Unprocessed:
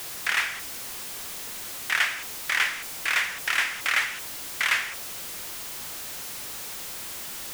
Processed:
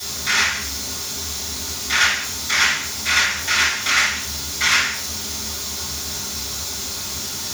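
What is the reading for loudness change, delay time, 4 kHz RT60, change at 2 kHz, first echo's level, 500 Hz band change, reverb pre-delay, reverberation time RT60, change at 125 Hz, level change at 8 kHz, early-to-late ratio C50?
+8.0 dB, no echo audible, 0.40 s, +6.0 dB, no echo audible, +9.0 dB, 3 ms, 0.45 s, can't be measured, +12.5 dB, 5.0 dB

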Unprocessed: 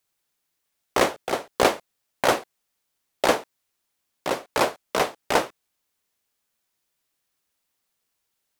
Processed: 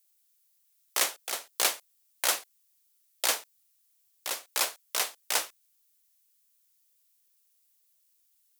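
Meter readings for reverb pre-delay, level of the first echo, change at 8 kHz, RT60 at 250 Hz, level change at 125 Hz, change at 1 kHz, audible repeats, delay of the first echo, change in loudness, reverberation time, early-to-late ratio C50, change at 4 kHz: no reverb audible, no echo audible, +5.0 dB, no reverb audible, below −25 dB, −12.5 dB, no echo audible, no echo audible, −5.0 dB, no reverb audible, no reverb audible, −0.5 dB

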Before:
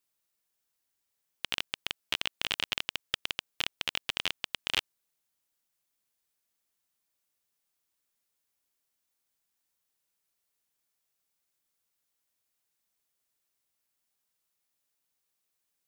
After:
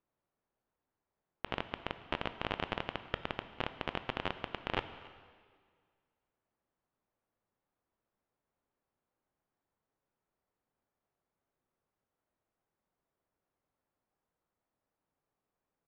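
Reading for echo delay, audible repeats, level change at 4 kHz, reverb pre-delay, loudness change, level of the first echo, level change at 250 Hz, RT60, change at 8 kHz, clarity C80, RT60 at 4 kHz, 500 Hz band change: 278 ms, 1, −12.5 dB, 7 ms, −6.5 dB, −23.0 dB, +8.0 dB, 1.9 s, below −25 dB, 13.0 dB, 1.7 s, +7.5 dB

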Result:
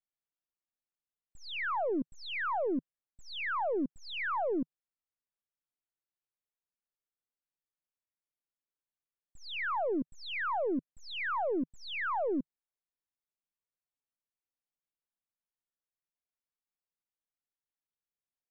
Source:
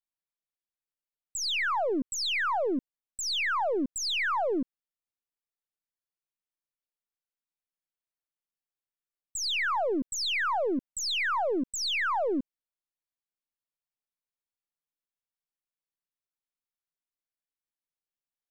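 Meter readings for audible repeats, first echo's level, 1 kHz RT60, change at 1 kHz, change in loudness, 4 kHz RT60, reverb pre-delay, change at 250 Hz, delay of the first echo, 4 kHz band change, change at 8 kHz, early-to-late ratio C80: no echo audible, no echo audible, no reverb audible, −4.5 dB, −6.0 dB, no reverb audible, no reverb audible, −3.0 dB, no echo audible, −12.5 dB, below −25 dB, no reverb audible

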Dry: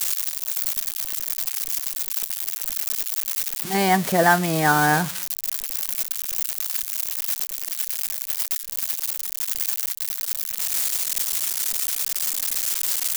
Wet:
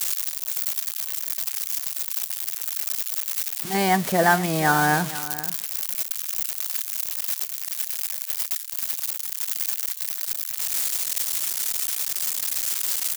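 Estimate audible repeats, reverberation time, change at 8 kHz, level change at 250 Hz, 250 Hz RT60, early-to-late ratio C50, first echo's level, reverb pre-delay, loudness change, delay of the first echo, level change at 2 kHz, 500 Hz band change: 1, no reverb audible, −1.5 dB, −1.5 dB, no reverb audible, no reverb audible, −15.5 dB, no reverb audible, −1.5 dB, 474 ms, −1.5 dB, −1.5 dB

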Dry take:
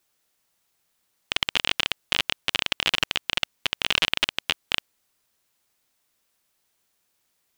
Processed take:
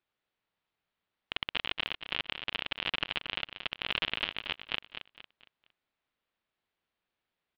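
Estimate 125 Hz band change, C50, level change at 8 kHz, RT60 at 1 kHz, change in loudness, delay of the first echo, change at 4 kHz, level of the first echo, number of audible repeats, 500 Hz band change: −7.5 dB, no reverb audible, below −30 dB, no reverb audible, −9.5 dB, 230 ms, −10.0 dB, −9.0 dB, 3, −7.5 dB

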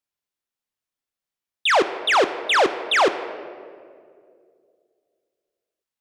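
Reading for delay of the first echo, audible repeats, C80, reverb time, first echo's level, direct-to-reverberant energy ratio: no echo audible, no echo audible, 13.0 dB, 2.3 s, no echo audible, 10.0 dB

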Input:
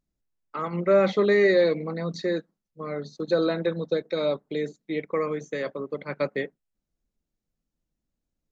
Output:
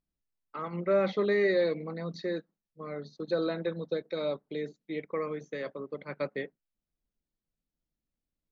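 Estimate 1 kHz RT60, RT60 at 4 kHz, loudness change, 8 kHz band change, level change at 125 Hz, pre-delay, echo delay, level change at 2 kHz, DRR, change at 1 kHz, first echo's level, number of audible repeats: no reverb audible, no reverb audible, −6.5 dB, can't be measured, −6.5 dB, no reverb audible, no echo audible, −6.5 dB, no reverb audible, −6.5 dB, no echo audible, no echo audible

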